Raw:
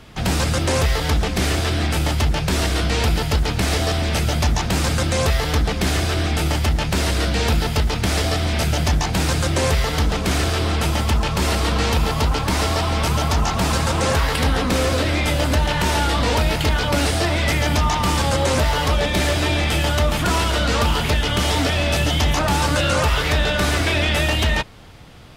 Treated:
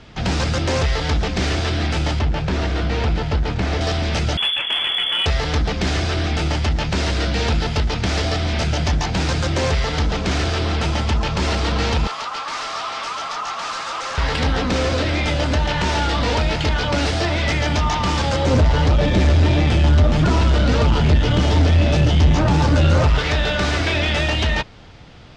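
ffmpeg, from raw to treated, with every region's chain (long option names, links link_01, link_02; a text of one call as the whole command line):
ffmpeg -i in.wav -filter_complex "[0:a]asettb=1/sr,asplit=3[link_01][link_02][link_03];[link_01]atrim=end=2.194[link_04];[link_02]atrim=start=2.19:end=3.81,asetpts=PTS-STARTPTS,afade=type=in:duration=0.004:curve=qsin,afade=type=out:start_time=1.616:duration=0.004:curve=qsin,aemphasis=mode=reproduction:type=75kf,aeval=exprs='val(0)*gte(abs(val(0)),0.02)':channel_layout=same[link_05];[link_03]atrim=start=3.806[link_06];[link_04][link_05]acrossfade=duration=0.004:curve1=hsin:curve2=qsin[link_07];[link_07][link_06]acrossfade=duration=0.004:curve1=qsin:curve2=hsin,asettb=1/sr,asplit=3[link_08][link_09][link_10];[link_08]atrim=end=4.374[link_11];[link_09]atrim=start=4.37:end=5.26,asetpts=PTS-STARTPTS,afade=type=in:duration=0.004:curve=qsin,afade=type=out:start_time=0.886:duration=0.004:curve=qsin,highpass=74,lowpass=frequency=3000:width_type=q:width=0.5098,lowpass=frequency=3000:width_type=q:width=0.6013,lowpass=frequency=3000:width_type=q:width=0.9,lowpass=frequency=3000:width_type=q:width=2.563,afreqshift=-3500[link_12];[link_10]atrim=start=5.256[link_13];[link_11][link_12]acrossfade=duration=0.004:curve1=hsin:curve2=qsin[link_14];[link_14][link_13]acrossfade=duration=0.004:curve1=qsin:curve2=hsin,asettb=1/sr,asplit=3[link_15][link_16][link_17];[link_15]atrim=end=12.074[link_18];[link_16]atrim=start=12.07:end=14.18,asetpts=PTS-STARTPTS,afade=type=in:duration=0.004:curve=qsin,afade=type=out:start_time=2.106:duration=0.004:curve=qsin,highpass=790,asoftclip=type=hard:threshold=-26dB,equalizer=frequency=1200:width=6.2:gain=11[link_19];[link_17]atrim=start=14.176[link_20];[link_18][link_19]acrossfade=duration=0.004:curve1=hsin:curve2=qsin[link_21];[link_21][link_20]acrossfade=duration=0.004:curve1=qsin:curve2=hsin,asettb=1/sr,asplit=3[link_22][link_23][link_24];[link_22]atrim=end=18.454[link_25];[link_23]atrim=start=18.45:end=23.19,asetpts=PTS-STARTPTS,afade=type=in:duration=0.004:curve=qsin,afade=type=out:start_time=4.736:duration=0.004:curve=qsin,aeval=exprs='val(0)+0.5*0.0398*sgn(val(0))':channel_layout=same,lowshelf=frequency=490:gain=12,flanger=delay=6.4:depth=6.7:regen=47:speed=1.7:shape=sinusoidal[link_26];[link_24]atrim=start=23.186[link_27];[link_25][link_26]acrossfade=duration=0.004:curve1=hsin:curve2=qsin[link_28];[link_28][link_27]acrossfade=duration=0.004:curve1=qsin:curve2=hsin,lowpass=frequency=6400:width=0.5412,lowpass=frequency=6400:width=1.3066,bandreject=frequency=1100:width=26,acontrast=75,volume=-6.5dB" out.wav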